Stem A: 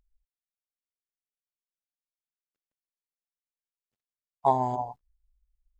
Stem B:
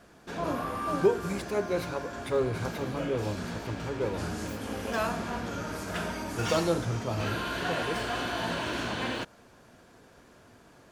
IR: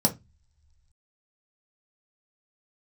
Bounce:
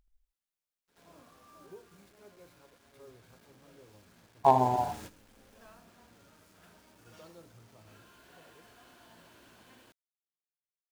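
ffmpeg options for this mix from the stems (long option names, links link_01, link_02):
-filter_complex "[0:a]asoftclip=type=hard:threshold=-12dB,volume=1dB,asplit=3[link_01][link_02][link_03];[link_02]volume=-11dB[link_04];[1:a]acrusher=bits=5:mix=0:aa=0.000001,adelay=600,volume=-12dB,asplit=2[link_05][link_06];[link_06]volume=-15dB[link_07];[link_03]apad=whole_len=507885[link_08];[link_05][link_08]sidechaingate=range=-26dB:threshold=-56dB:ratio=16:detection=peak[link_09];[link_04][link_07]amix=inputs=2:normalize=0,aecho=0:1:78:1[link_10];[link_01][link_09][link_10]amix=inputs=3:normalize=0"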